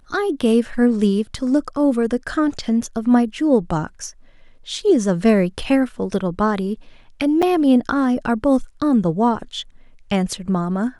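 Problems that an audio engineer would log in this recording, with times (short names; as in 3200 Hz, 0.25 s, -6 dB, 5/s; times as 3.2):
7.42–7.43 gap 6.3 ms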